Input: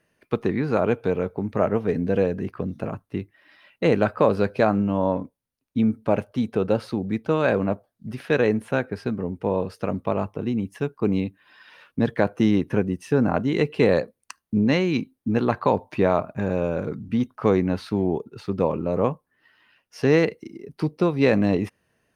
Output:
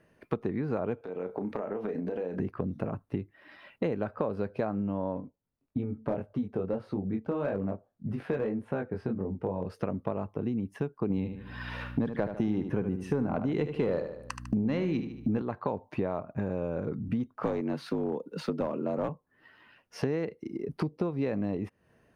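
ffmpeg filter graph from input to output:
-filter_complex "[0:a]asettb=1/sr,asplit=3[s0][s1][s2];[s0]atrim=end=1.014[s3];[s1]atrim=start=1.01:end=2.4,asetpts=PTS-STARTPTS,afade=t=in:d=0.004:c=qsin,afade=t=out:st=1.386:d=0.004:c=qsin,highpass=270,acompressor=threshold=0.0251:ratio=16:attack=3.2:release=140:knee=1:detection=peak,asplit=2[s4][s5];[s5]adelay=33,volume=0.398[s6];[s4][s6]amix=inputs=2:normalize=0,atrim=end_sample=61299[s7];[s2]atrim=start=2.396[s8];[s3][s7]acrossfade=d=0.004:c1=hsin:c2=qsin[s9];[s9][s8]acrossfade=d=0.004:c1=qsin:c2=hsin,asettb=1/sr,asplit=3[s10][s11][s12];[s10]atrim=end=5.214[s13];[s11]atrim=start=5.21:end=9.66,asetpts=PTS-STARTPTS,afade=t=in:d=0.004:c=qsin,afade=t=out:st=4.446:d=0.004:c=qsin,highshelf=f=2400:g=-8,flanger=delay=20:depth=2.7:speed=1.7,asoftclip=type=hard:threshold=0.158[s14];[s12]atrim=start=9.656[s15];[s13][s14]acrossfade=d=0.004:c1=hsin:c2=qsin[s16];[s16][s15]acrossfade=d=0.004:c1=qsin:c2=hsin,asettb=1/sr,asplit=3[s17][s18][s19];[s17]atrim=end=11.104[s20];[s18]atrim=start=11.1:end=15.42,asetpts=PTS-STARTPTS,afade=t=in:d=0.004:c=qsin,afade=t=out:st=4.316:d=0.004:c=qsin,acontrast=85,aeval=exprs='val(0)+0.00501*(sin(2*PI*60*n/s)+sin(2*PI*2*60*n/s)/2+sin(2*PI*3*60*n/s)/3+sin(2*PI*4*60*n/s)/4+sin(2*PI*5*60*n/s)/5)':c=same,aecho=1:1:75|150|225|300:0.316|0.111|0.0387|0.0136,atrim=end_sample=190512[s21];[s19]atrim=start=15.416[s22];[s20][s21]acrossfade=d=0.004:c1=hsin:c2=qsin[s23];[s23][s22]acrossfade=d=0.004:c1=qsin:c2=hsin,asettb=1/sr,asplit=3[s24][s25][s26];[s24]atrim=end=17.434[s27];[s25]atrim=start=17.43:end=19.09,asetpts=PTS-STARTPTS,afade=t=in:d=0.004:c=qsin,afade=t=out:st=1.656:d=0.004:c=qsin,highshelf=f=2300:g=8,afreqshift=56,aeval=exprs='clip(val(0),-1,0.141)':c=same[s28];[s26]atrim=start=19.086[s29];[s27][s28]acrossfade=d=0.004:c1=hsin:c2=qsin[s30];[s30][s29]acrossfade=d=0.004:c1=qsin:c2=hsin,highshelf=f=2000:g=-11.5,acompressor=threshold=0.0158:ratio=5,volume=2.11"

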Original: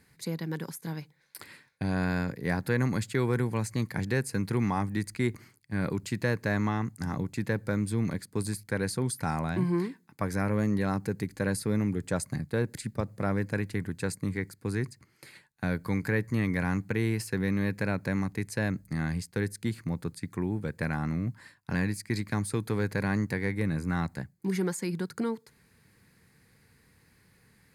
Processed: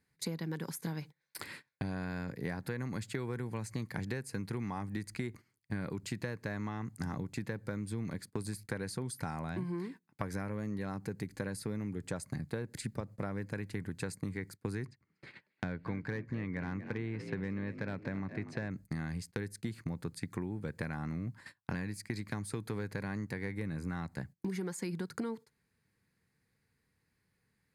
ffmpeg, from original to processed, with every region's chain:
-filter_complex "[0:a]asettb=1/sr,asplit=3[s0][s1][s2];[s0]atrim=end=14.864[s3];[s1]atrim=start=14.86:end=18.71,asetpts=PTS-STARTPTS,afade=t=in:d=0.004:c=qsin,afade=t=out:st=3.846:d=0.004:c=qsin,lowpass=3100,asoftclip=type=hard:threshold=0.126,asplit=5[s4][s5][s6][s7][s8];[s5]adelay=238,afreqshift=57,volume=0.2[s9];[s6]adelay=476,afreqshift=114,volume=0.0861[s10];[s7]adelay=714,afreqshift=171,volume=0.0367[s11];[s8]adelay=952,afreqshift=228,volume=0.0158[s12];[s4][s9][s10][s11][s12]amix=inputs=5:normalize=0,atrim=end_sample=169785[s13];[s2]atrim=start=18.706[s14];[s3][s13]acrossfade=d=0.004:c1=hsin:c2=qsin[s15];[s15][s14]acrossfade=d=0.004:c1=qsin:c2=hsin,acompressor=threshold=0.0141:ratio=16,agate=range=0.112:threshold=0.00251:ratio=16:detection=peak,highshelf=f=11000:g=-5,volume=1.5"

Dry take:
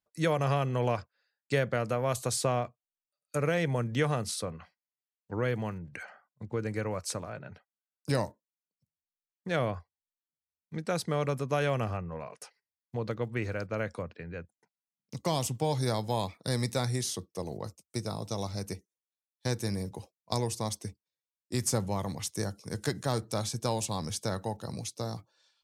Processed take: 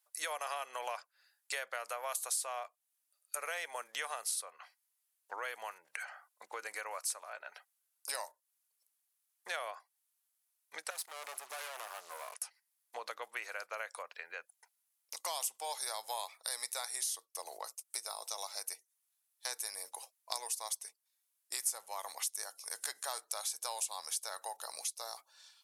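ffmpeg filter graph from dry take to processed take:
-filter_complex "[0:a]asettb=1/sr,asplit=3[s0][s1][s2];[s0]atrim=end=10.904[s3];[s1]atrim=start=10.9:end=12.35,asetpts=PTS-STARTPTS,afade=t=in:d=0.004:c=qsin,afade=t=out:st=1.446:d=0.004:c=qsin,acrusher=bits=8:mix=0:aa=0.5,aeval=exprs='(tanh(89.1*val(0)+0.7)-tanh(0.7))/89.1':c=same[s4];[s2]atrim=start=12.346[s5];[s3][s4]acrossfade=d=0.004:c1=hsin:c2=qsin[s6];[s6][s5]acrossfade=d=0.004:c1=qsin:c2=hsin,highpass=f=730:w=0.5412,highpass=f=730:w=1.3066,equalizer=f=11000:w=0.98:g=14,acompressor=threshold=0.00355:ratio=2.5,volume=2.24"

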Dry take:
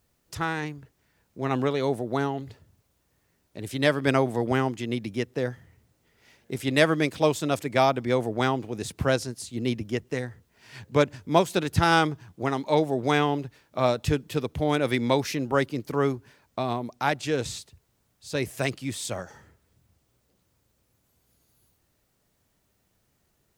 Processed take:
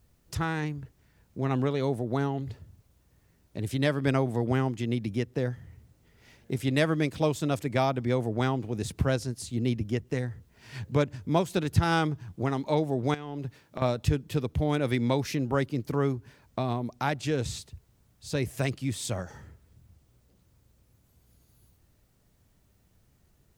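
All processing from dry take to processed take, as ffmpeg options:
-filter_complex "[0:a]asettb=1/sr,asplit=3[s0][s1][s2];[s0]atrim=end=13.144[s3];[s1]atrim=start=13.14:end=13.82,asetpts=PTS-STARTPTS,afade=t=in:d=0.004:c=qsin,afade=t=out:st=0.676:d=0.004:c=qsin,highpass=110,acompressor=threshold=0.0224:ratio=6:attack=3.2:release=140:knee=1:detection=peak[s4];[s2]atrim=start=13.816[s5];[s3][s4]acrossfade=d=0.004:c1=hsin:c2=qsin[s6];[s6][s5]acrossfade=d=0.004:c1=qsin:c2=hsin,lowshelf=f=190:g=11.5,acompressor=threshold=0.0251:ratio=1.5"

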